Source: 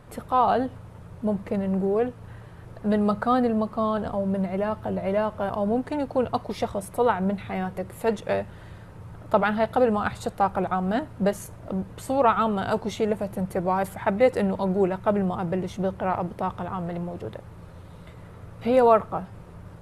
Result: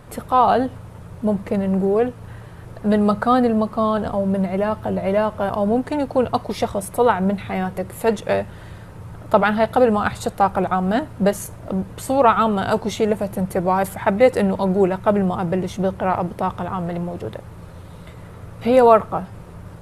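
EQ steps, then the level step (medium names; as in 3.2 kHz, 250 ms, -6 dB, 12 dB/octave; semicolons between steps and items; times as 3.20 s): treble shelf 5.9 kHz +4.5 dB; +5.5 dB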